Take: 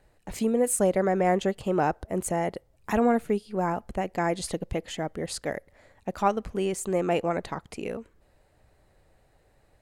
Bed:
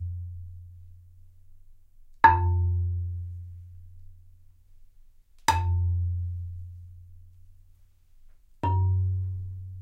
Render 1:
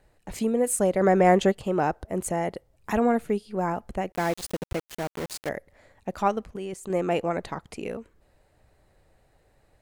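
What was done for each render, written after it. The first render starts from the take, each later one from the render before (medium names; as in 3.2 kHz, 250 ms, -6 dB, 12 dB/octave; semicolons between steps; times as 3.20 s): 1.01–1.52 s: gain +5 dB; 4.12–5.49 s: small samples zeroed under -31 dBFS; 6.44–6.90 s: level held to a coarse grid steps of 11 dB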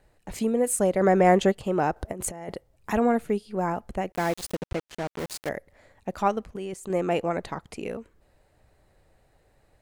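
1.96–2.55 s: compressor with a negative ratio -32 dBFS, ratio -0.5; 4.55–5.19 s: distance through air 52 m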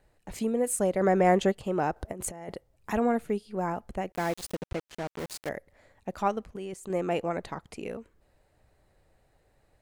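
trim -3.5 dB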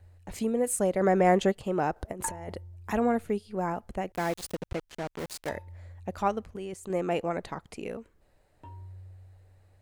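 add bed -21 dB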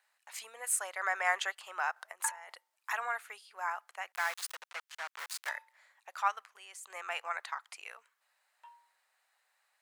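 high-pass 1 kHz 24 dB/octave; dynamic bell 1.5 kHz, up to +5 dB, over -51 dBFS, Q 1.2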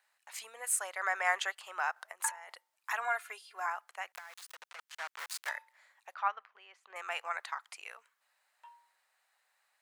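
3.04–3.66 s: comb 2.9 ms, depth 85%; 4.18–4.79 s: compression 8:1, threshold -45 dBFS; 6.14–6.96 s: distance through air 300 m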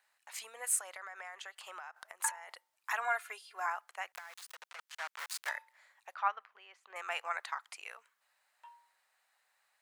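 0.80–2.19 s: compression 12:1, threshold -42 dBFS; 4.39–5.37 s: high-pass 280 Hz -> 510 Hz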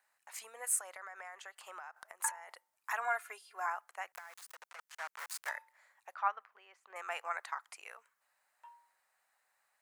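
peaking EQ 3.5 kHz -7 dB 1.3 oct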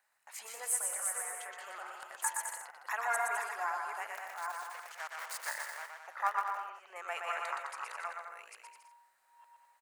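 chunks repeated in reverse 452 ms, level -3.5 dB; bouncing-ball echo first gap 120 ms, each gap 0.75×, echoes 5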